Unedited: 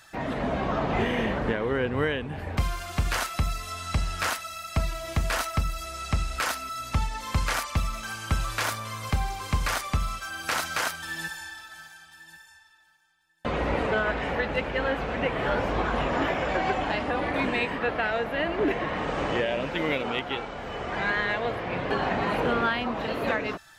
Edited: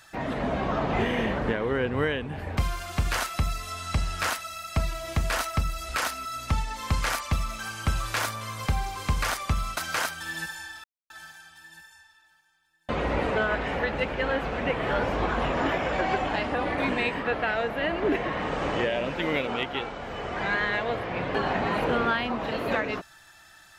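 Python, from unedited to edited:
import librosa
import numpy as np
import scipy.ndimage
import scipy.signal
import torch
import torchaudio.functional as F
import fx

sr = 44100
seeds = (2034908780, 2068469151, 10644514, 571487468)

y = fx.edit(x, sr, fx.cut(start_s=5.89, length_s=0.44),
    fx.cut(start_s=10.21, length_s=0.38),
    fx.insert_silence(at_s=11.66, length_s=0.26), tone=tone)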